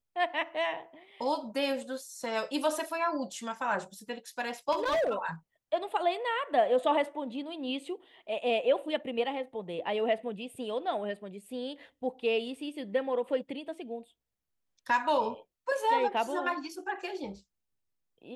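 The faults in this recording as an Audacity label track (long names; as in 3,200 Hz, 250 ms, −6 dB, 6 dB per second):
4.710000	5.140000	clipping −25 dBFS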